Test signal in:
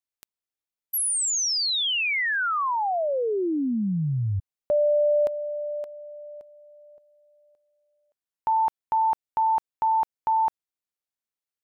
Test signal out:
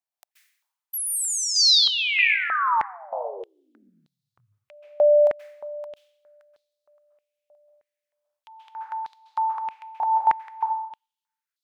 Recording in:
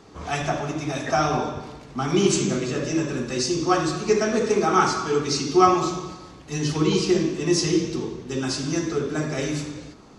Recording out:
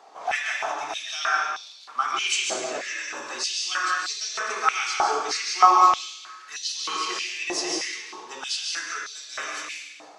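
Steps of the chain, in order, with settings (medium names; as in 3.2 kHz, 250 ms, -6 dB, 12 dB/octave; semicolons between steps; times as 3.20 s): plate-style reverb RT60 0.74 s, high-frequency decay 1×, pre-delay 120 ms, DRR 1.5 dB; step-sequenced high-pass 3.2 Hz 730–4000 Hz; trim -3.5 dB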